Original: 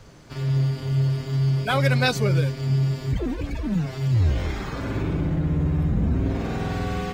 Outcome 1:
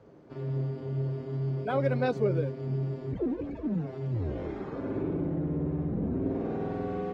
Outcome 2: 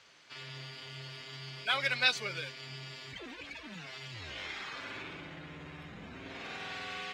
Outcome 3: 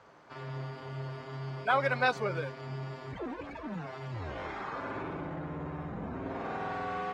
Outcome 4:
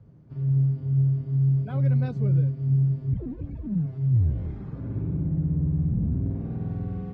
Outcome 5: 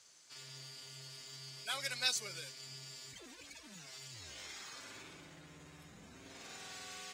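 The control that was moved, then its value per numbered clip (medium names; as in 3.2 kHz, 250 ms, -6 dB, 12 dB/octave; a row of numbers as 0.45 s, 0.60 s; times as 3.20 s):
band-pass filter, frequency: 390 Hz, 2.9 kHz, 1 kHz, 130 Hz, 7.6 kHz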